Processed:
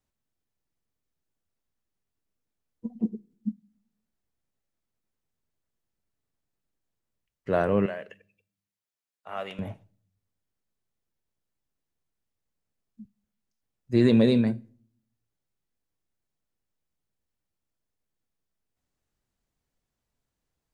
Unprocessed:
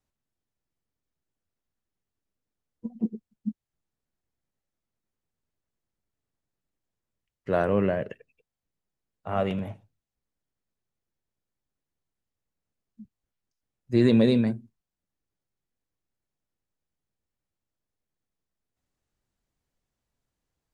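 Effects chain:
0:07.86–0:09.59: high-pass filter 1,500 Hz 6 dB per octave
on a send: high-shelf EQ 2,500 Hz +11.5 dB + convolution reverb RT60 0.60 s, pre-delay 5 ms, DRR 19.5 dB

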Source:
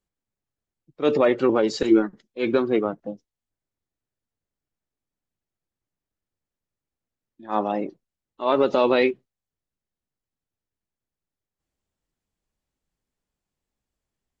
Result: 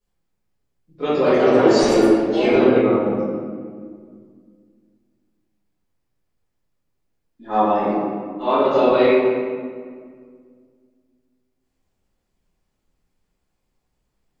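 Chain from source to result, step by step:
downward compressor, threshold −22 dBFS, peak gain reduction 10 dB
convolution reverb RT60 1.9 s, pre-delay 4 ms, DRR −14 dB
0:01.01–0:03.01: delay with pitch and tempo change per echo 218 ms, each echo +4 semitones, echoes 3, each echo −6 dB
level −4.5 dB

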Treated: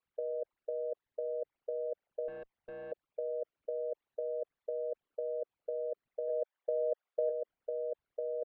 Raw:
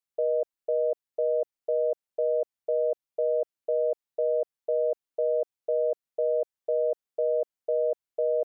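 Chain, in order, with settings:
spectral envelope exaggerated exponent 3
0:06.28–0:07.29: high-pass filter 530 Hz → 700 Hz 12 dB per octave
compressor whose output falls as the input rises −36 dBFS, ratio −1
0:02.28–0:02.92: tube saturation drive 43 dB, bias 0.25
high-frequency loss of the air 470 metres
level +2 dB

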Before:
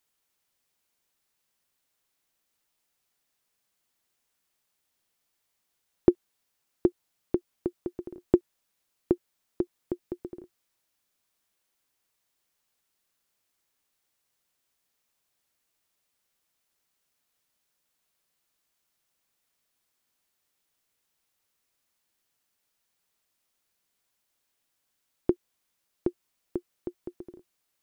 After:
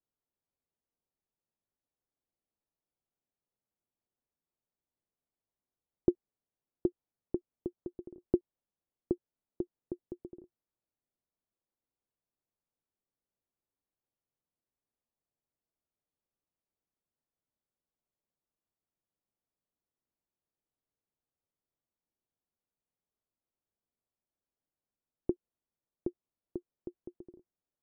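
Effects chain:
Bessel low-pass filter 560 Hz, order 2
level −6 dB

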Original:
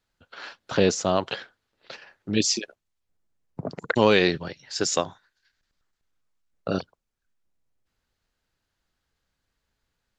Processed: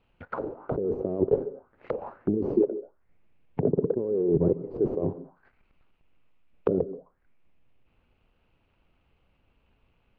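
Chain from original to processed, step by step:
running median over 25 samples
compressor whose output falls as the input rises −33 dBFS, ratio −1
soft clipping −24.5 dBFS, distortion −11 dB
on a send at −17.5 dB: convolution reverb RT60 0.25 s, pre-delay 130 ms
on the sum: envelope-controlled low-pass 410–2,900 Hz down, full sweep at −37 dBFS
level +5 dB

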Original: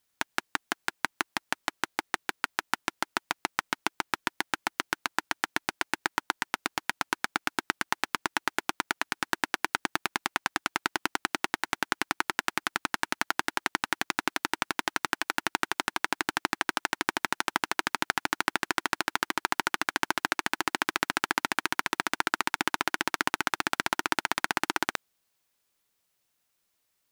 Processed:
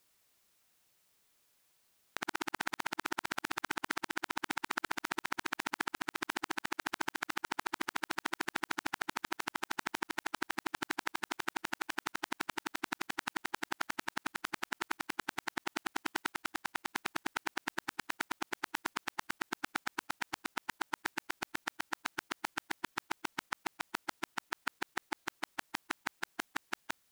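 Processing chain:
played backwards from end to start
output level in coarse steps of 20 dB
brickwall limiter −21.5 dBFS, peak gain reduction 6 dB
level +7.5 dB

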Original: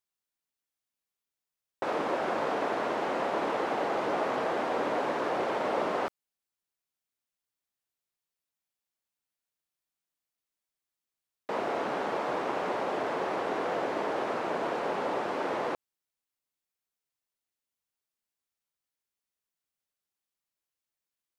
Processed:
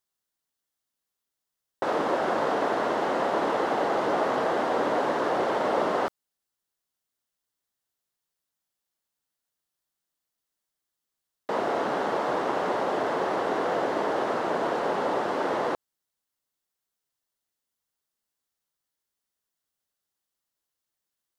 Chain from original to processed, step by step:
parametric band 2,400 Hz −6.5 dB 0.33 octaves
level +4.5 dB

